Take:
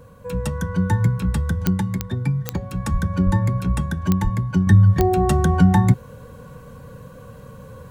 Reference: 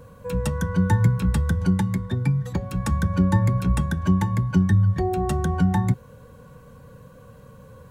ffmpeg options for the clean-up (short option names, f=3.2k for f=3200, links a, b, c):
-filter_complex "[0:a]adeclick=t=4,asplit=3[a][b][c];[a]afade=t=out:st=2.92:d=0.02[d];[b]highpass=f=140:w=0.5412,highpass=f=140:w=1.3066,afade=t=in:st=2.92:d=0.02,afade=t=out:st=3.04:d=0.02[e];[c]afade=t=in:st=3.04:d=0.02[f];[d][e][f]amix=inputs=3:normalize=0,asplit=3[g][h][i];[g]afade=t=out:st=3.25:d=0.02[j];[h]highpass=f=140:w=0.5412,highpass=f=140:w=1.3066,afade=t=in:st=3.25:d=0.02,afade=t=out:st=3.37:d=0.02[k];[i]afade=t=in:st=3.37:d=0.02[l];[j][k][l]amix=inputs=3:normalize=0,asplit=3[m][n][o];[m]afade=t=out:st=4.23:d=0.02[p];[n]highpass=f=140:w=0.5412,highpass=f=140:w=1.3066,afade=t=in:st=4.23:d=0.02,afade=t=out:st=4.35:d=0.02[q];[o]afade=t=in:st=4.35:d=0.02[r];[p][q][r]amix=inputs=3:normalize=0,asetnsamples=n=441:p=0,asendcmd='4.67 volume volume -6dB',volume=0dB"